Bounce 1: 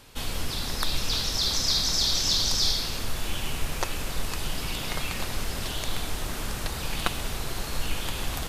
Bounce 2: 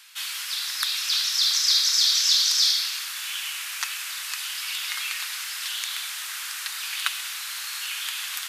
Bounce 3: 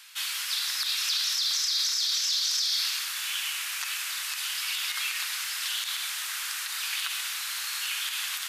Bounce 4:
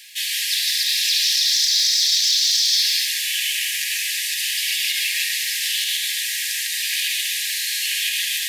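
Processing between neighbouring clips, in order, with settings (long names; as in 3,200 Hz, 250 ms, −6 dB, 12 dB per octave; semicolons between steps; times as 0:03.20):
high-pass filter 1,400 Hz 24 dB per octave; level +5 dB
brickwall limiter −18 dBFS, peak gain reduction 11.5 dB
log-companded quantiser 6 bits; linear-phase brick-wall high-pass 1,600 Hz; on a send at −1.5 dB: convolution reverb RT60 0.35 s, pre-delay 110 ms; on the sum: level +7 dB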